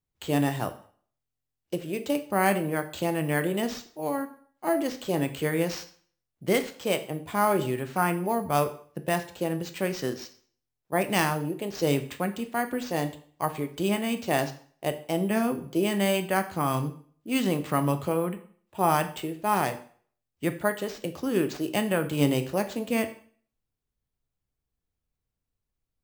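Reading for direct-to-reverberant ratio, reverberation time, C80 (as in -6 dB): 8.5 dB, 0.50 s, 17.0 dB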